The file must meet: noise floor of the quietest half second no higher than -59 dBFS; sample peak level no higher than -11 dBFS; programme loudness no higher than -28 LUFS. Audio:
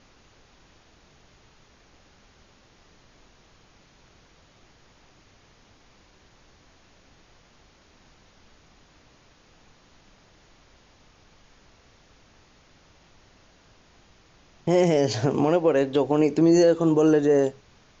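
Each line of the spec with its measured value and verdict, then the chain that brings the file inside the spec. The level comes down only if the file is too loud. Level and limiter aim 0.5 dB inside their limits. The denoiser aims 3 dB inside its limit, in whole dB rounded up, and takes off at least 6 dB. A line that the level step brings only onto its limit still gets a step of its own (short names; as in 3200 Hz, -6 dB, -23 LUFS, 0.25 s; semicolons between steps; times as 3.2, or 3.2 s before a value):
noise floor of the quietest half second -57 dBFS: fail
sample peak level -9.0 dBFS: fail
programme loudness -21.0 LUFS: fail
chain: gain -7.5 dB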